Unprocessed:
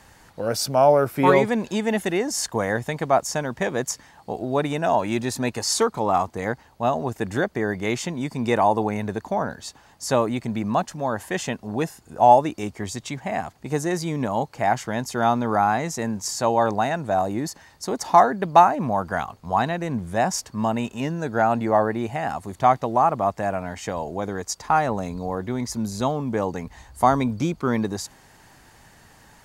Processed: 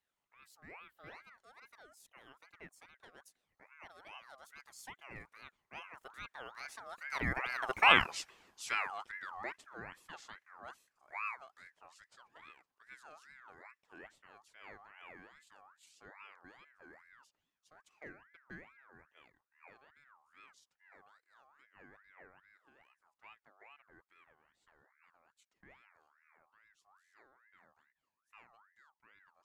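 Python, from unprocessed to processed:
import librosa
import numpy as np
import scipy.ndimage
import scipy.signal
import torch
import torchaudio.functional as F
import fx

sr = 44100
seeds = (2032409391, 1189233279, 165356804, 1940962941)

y = fx.doppler_pass(x, sr, speed_mps=55, closest_m=4.4, pass_at_s=7.95)
y = fx.ring_lfo(y, sr, carrier_hz=1400.0, swing_pct=35, hz=2.4)
y = y * librosa.db_to_amplitude(6.0)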